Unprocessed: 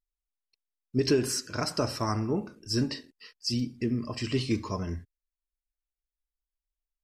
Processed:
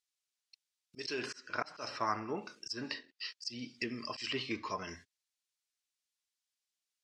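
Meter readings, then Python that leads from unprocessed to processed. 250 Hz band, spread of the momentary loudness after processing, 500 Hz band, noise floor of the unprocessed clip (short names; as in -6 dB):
-14.0 dB, 8 LU, -11.5 dB, under -85 dBFS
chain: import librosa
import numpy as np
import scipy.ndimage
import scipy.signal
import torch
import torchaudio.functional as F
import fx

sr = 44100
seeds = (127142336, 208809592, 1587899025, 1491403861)

y = scipy.signal.sosfilt(scipy.signal.butter(2, 5400.0, 'lowpass', fs=sr, output='sos'), x)
y = np.diff(y, prepend=0.0)
y = fx.auto_swell(y, sr, attack_ms=185.0)
y = fx.env_lowpass_down(y, sr, base_hz=1700.0, full_db=-46.5)
y = F.gain(torch.from_numpy(y), 16.5).numpy()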